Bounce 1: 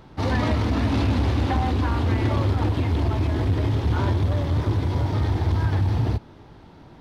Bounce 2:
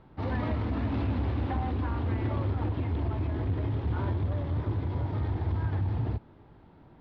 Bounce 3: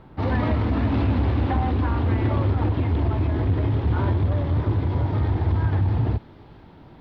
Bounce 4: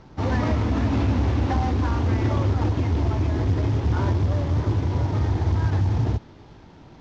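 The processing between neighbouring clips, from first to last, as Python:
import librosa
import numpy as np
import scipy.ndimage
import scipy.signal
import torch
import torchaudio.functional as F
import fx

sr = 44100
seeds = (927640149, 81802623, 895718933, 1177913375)

y1 = fx.air_absorb(x, sr, metres=320.0)
y1 = y1 * 10.0 ** (-7.5 / 20.0)
y2 = fx.echo_wet_highpass(y1, sr, ms=478, feedback_pct=80, hz=3200.0, wet_db=-15.5)
y2 = y2 * 10.0 ** (8.0 / 20.0)
y3 = fx.cvsd(y2, sr, bps=32000)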